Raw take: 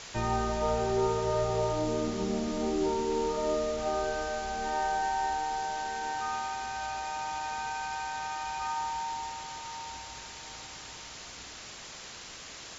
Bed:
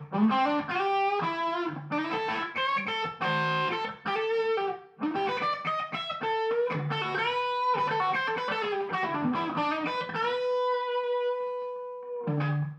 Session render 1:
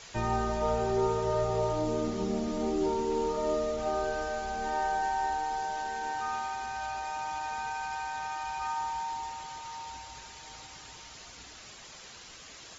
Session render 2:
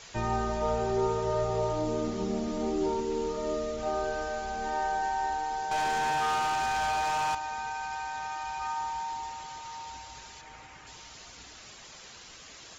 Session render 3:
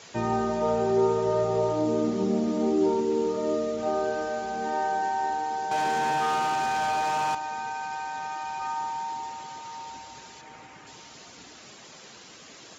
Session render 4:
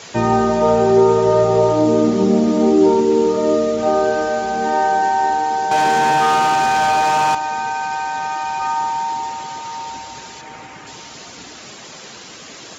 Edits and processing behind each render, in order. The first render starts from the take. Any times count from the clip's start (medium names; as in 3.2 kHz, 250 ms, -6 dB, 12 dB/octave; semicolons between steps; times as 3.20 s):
noise reduction 7 dB, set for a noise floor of -46 dBFS
3.00–3.83 s: peaking EQ 830 Hz -6 dB 0.84 oct; 5.71–7.35 s: waveshaping leveller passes 3; 10.41–10.87 s: resonant high shelf 3 kHz -7.5 dB, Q 1.5
high-pass 200 Hz 12 dB/octave; bass shelf 460 Hz +11 dB
trim +11 dB; peak limiter -3 dBFS, peak gain reduction 2 dB